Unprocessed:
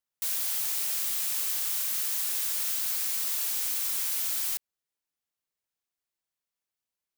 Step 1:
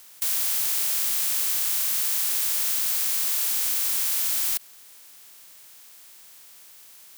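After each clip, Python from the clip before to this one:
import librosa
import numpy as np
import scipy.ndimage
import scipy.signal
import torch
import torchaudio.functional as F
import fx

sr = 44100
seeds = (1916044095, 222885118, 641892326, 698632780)

y = fx.bin_compress(x, sr, power=0.4)
y = y * librosa.db_to_amplitude(1.0)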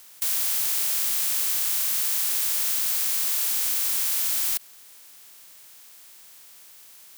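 y = x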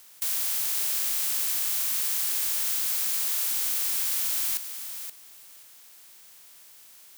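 y = fx.echo_feedback(x, sr, ms=526, feedback_pct=15, wet_db=-9.5)
y = y * librosa.db_to_amplitude(-3.0)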